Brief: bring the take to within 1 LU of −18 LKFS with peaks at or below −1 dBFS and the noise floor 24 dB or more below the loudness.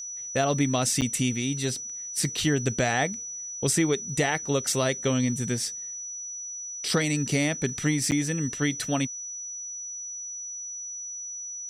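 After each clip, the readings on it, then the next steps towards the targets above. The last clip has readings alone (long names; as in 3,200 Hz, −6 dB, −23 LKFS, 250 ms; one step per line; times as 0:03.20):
number of dropouts 2; longest dropout 8.6 ms; interfering tone 5,900 Hz; level of the tone −34 dBFS; integrated loudness −27.5 LKFS; sample peak −12.0 dBFS; target loudness −18.0 LKFS
→ repair the gap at 0:01.01/0:08.11, 8.6 ms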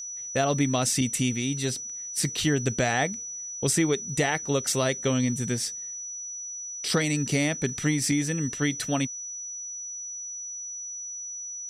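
number of dropouts 0; interfering tone 5,900 Hz; level of the tone −34 dBFS
→ notch filter 5,900 Hz, Q 30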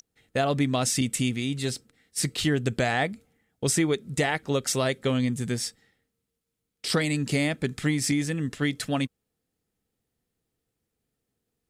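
interfering tone none found; integrated loudness −27.0 LKFS; sample peak −12.5 dBFS; target loudness −18.0 LKFS
→ level +9 dB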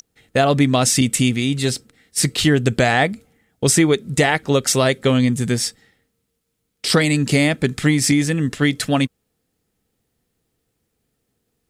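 integrated loudness −18.0 LKFS; sample peak −3.5 dBFS; background noise floor −73 dBFS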